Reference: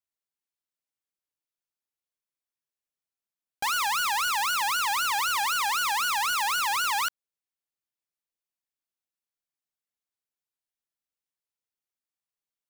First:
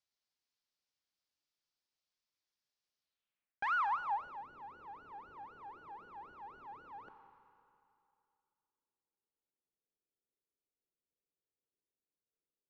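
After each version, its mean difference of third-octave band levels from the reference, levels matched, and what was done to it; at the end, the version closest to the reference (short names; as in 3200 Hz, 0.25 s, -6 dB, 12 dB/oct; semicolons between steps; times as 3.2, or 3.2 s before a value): 18.0 dB: Schroeder reverb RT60 2.6 s, combs from 30 ms, DRR 17 dB; reverse; compressor 6:1, threshold -36 dBFS, peak gain reduction 11 dB; reverse; low-pass sweep 5000 Hz -> 430 Hz, 2.98–4.48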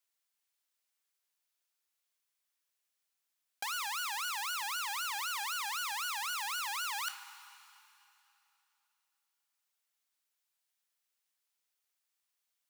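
4.5 dB: two-slope reverb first 0.21 s, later 3 s, from -20 dB, DRR 20 dB; negative-ratio compressor -35 dBFS, ratio -1; HPF 1200 Hz 6 dB/oct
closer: second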